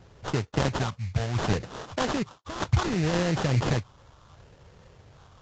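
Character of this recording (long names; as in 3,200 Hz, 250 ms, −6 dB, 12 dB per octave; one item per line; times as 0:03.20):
phaser sweep stages 4, 0.68 Hz, lowest notch 330–2,000 Hz
aliases and images of a low sample rate 2,300 Hz, jitter 20%
Ogg Vorbis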